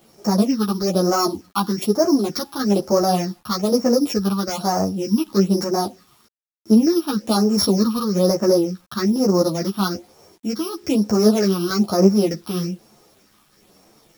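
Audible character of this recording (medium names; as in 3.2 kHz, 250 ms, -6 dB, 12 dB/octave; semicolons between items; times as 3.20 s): a buzz of ramps at a fixed pitch in blocks of 8 samples; phasing stages 6, 1.1 Hz, lowest notch 520–3500 Hz; a quantiser's noise floor 10-bit, dither none; a shimmering, thickened sound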